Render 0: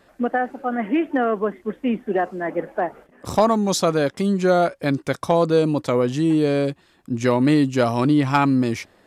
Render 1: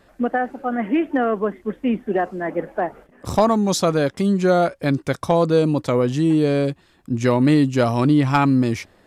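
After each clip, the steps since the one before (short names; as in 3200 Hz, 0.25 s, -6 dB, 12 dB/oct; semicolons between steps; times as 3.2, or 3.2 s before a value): low shelf 110 Hz +8.5 dB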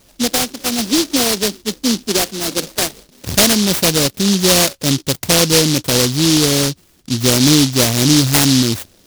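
noise-modulated delay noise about 4500 Hz, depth 0.32 ms; gain +4 dB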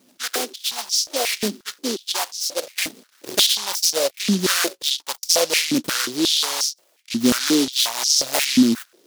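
stepped high-pass 5.6 Hz 240–5400 Hz; gain -8.5 dB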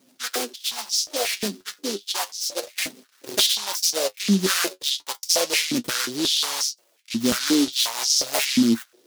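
flange 0.32 Hz, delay 7.3 ms, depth 3.6 ms, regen +45%; gain +1.5 dB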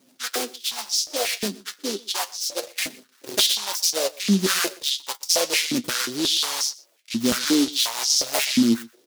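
echo 0.123 s -22.5 dB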